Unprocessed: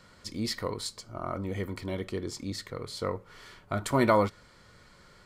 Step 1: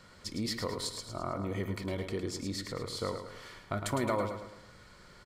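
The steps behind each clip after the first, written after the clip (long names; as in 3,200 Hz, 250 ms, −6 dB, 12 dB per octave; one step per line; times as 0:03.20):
downward compressor 2.5 to 1, threshold −32 dBFS, peak gain reduction 9.5 dB
on a send: repeating echo 108 ms, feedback 45%, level −7.5 dB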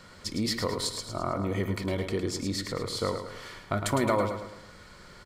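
mains-hum notches 60/120 Hz
level +5.5 dB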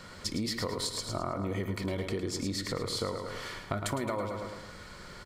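downward compressor, threshold −33 dBFS, peak gain reduction 12 dB
level +3 dB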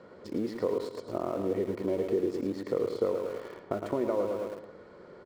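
resonant band-pass 430 Hz, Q 1.9
in parallel at −8.5 dB: centre clipping without the shift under −44 dBFS
on the sum: level +6 dB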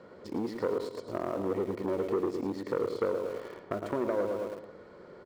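saturating transformer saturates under 800 Hz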